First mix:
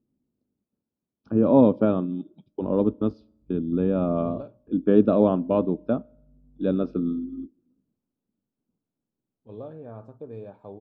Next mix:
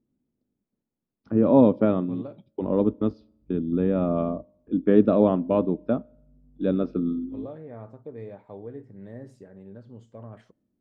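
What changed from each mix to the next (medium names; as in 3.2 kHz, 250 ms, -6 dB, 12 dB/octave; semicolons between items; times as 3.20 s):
second voice: entry -2.15 s; master: remove Butterworth band-stop 2 kHz, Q 3.3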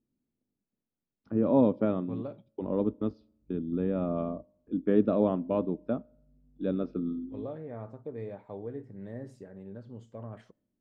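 first voice -6.5 dB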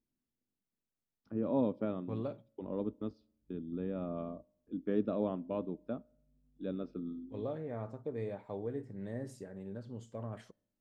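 first voice -8.5 dB; master: remove low-pass 2.7 kHz 6 dB/octave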